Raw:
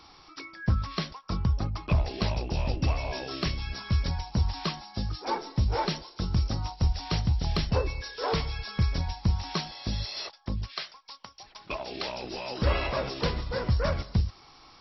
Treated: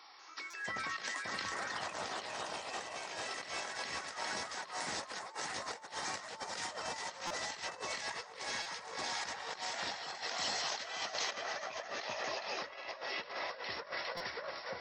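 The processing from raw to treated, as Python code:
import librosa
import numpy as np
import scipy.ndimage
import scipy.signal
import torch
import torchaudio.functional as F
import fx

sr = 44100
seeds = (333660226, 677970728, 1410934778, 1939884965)

y = fx.echo_pitch(x, sr, ms=192, semitones=3, count=3, db_per_echo=-3.0)
y = scipy.signal.sosfilt(scipy.signal.cheby1(2, 1.0, 670.0, 'highpass', fs=sr, output='sos'), y)
y = fx.peak_eq(y, sr, hz=1900.0, db=9.5, octaves=0.24)
y = fx.echo_split(y, sr, split_hz=1800.0, low_ms=573, high_ms=408, feedback_pct=52, wet_db=-3.0)
y = fx.over_compress(y, sr, threshold_db=-35.0, ratio=-0.5)
y = fx.high_shelf(y, sr, hz=3900.0, db=8.0, at=(10.38, 11.31))
y = fx.buffer_glitch(y, sr, at_s=(0.5, 7.27, 8.62, 14.17), block=256, repeats=5)
y = y * 10.0 ** (-6.0 / 20.0)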